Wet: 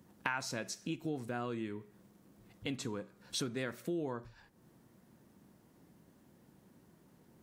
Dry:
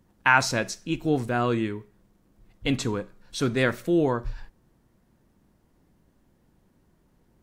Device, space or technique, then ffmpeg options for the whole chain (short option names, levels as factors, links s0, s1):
ASMR close-microphone chain: -af "lowshelf=f=160:g=7.5,acompressor=threshold=0.0141:ratio=5,highpass=160,highshelf=f=6900:g=4.5,volume=1.12"